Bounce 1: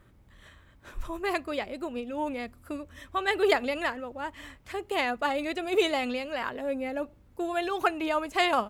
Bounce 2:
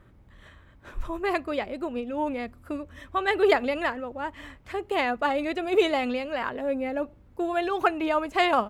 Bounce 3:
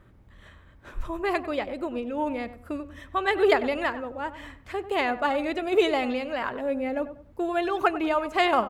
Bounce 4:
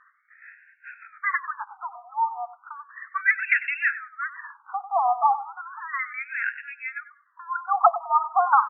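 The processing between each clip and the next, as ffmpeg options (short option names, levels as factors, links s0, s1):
-af "highshelf=f=3700:g=-9.5,volume=1.5"
-filter_complex "[0:a]asplit=2[s0][s1];[s1]adelay=96,lowpass=f=1500:p=1,volume=0.251,asplit=2[s2][s3];[s3]adelay=96,lowpass=f=1500:p=1,volume=0.33,asplit=2[s4][s5];[s5]adelay=96,lowpass=f=1500:p=1,volume=0.33[s6];[s0][s2][s4][s6]amix=inputs=4:normalize=0"
-af "highpass=460,lowpass=5600,afftfilt=real='re*between(b*sr/1024,920*pow(2000/920,0.5+0.5*sin(2*PI*0.34*pts/sr))/1.41,920*pow(2000/920,0.5+0.5*sin(2*PI*0.34*pts/sr))*1.41)':imag='im*between(b*sr/1024,920*pow(2000/920,0.5+0.5*sin(2*PI*0.34*pts/sr))/1.41,920*pow(2000/920,0.5+0.5*sin(2*PI*0.34*pts/sr))*1.41)':win_size=1024:overlap=0.75,volume=2.66"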